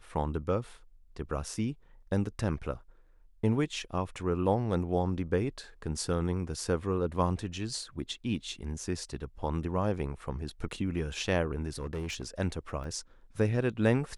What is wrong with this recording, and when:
11.76–12.28 clipped -31.5 dBFS
12.84 gap 2.6 ms

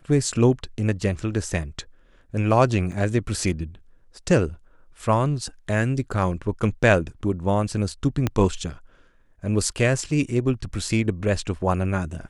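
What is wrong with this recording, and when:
2.92 gap 3.1 ms
8.27 pop -9 dBFS

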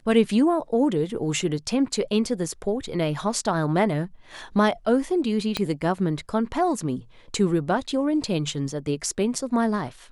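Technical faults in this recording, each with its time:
5.57 pop -10 dBFS

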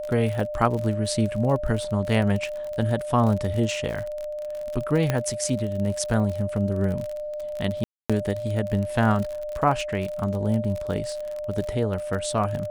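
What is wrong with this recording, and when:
crackle 46/s -28 dBFS
tone 600 Hz -29 dBFS
5.1 pop -9 dBFS
7.84–8.1 gap 0.256 s

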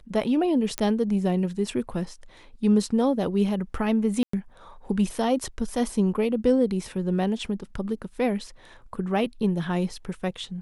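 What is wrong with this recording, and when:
0.78 pop -9 dBFS
4.23–4.33 gap 0.104 s

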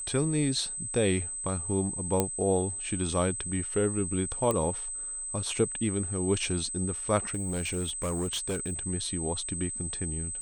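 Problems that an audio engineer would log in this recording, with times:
tone 8200 Hz -34 dBFS
2.2 pop -10 dBFS
4.51 pop -14 dBFS
7.28–8.74 clipped -27 dBFS

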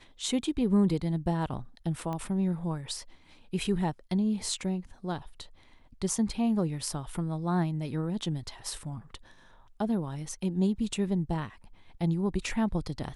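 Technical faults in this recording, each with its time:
2.13 pop -23 dBFS

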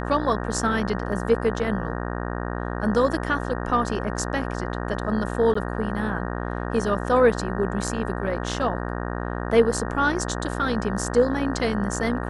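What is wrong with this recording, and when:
buzz 60 Hz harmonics 31 -29 dBFS
1.12 gap 2.4 ms
5.54–5.55 gap 14 ms

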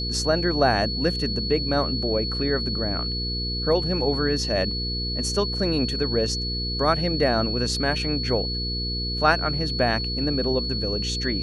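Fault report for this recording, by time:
hum 60 Hz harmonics 8 -30 dBFS
tone 4400 Hz -28 dBFS

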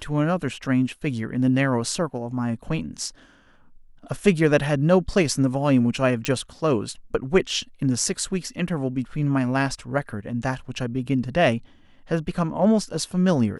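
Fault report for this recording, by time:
6.25 pop -8 dBFS

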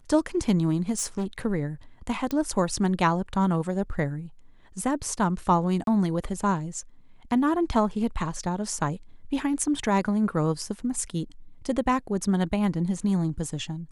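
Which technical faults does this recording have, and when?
0.93–1.26 clipped -24 dBFS
2.31 pop -15 dBFS
5.84–5.87 gap 32 ms

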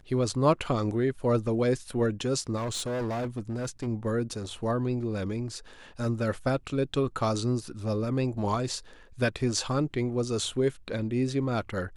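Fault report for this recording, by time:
2.56–3.88 clipped -28 dBFS

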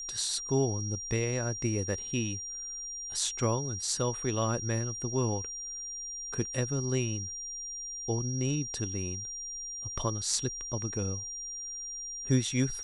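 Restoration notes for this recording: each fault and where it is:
tone 5700 Hz -37 dBFS

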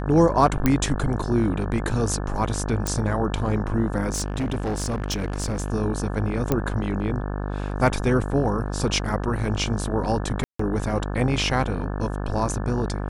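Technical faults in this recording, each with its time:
buzz 50 Hz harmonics 35 -28 dBFS
0.66 pop -6 dBFS
2.87 pop
4.12–5.7 clipped -21.5 dBFS
6.52 pop -8 dBFS
10.44–10.59 gap 0.154 s

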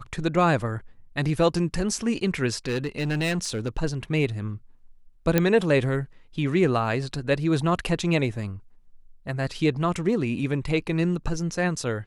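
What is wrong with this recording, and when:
2.65–3.69 clipped -22 dBFS
5.38 pop -6 dBFS

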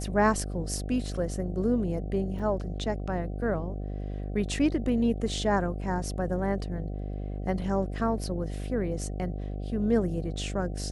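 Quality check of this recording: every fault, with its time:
buzz 50 Hz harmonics 15 -34 dBFS
2.39–2.4 gap 5.6 ms

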